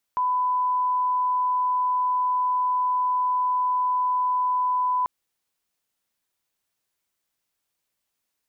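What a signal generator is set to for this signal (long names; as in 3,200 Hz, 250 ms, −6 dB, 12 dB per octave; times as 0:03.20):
line-up tone −20 dBFS 4.89 s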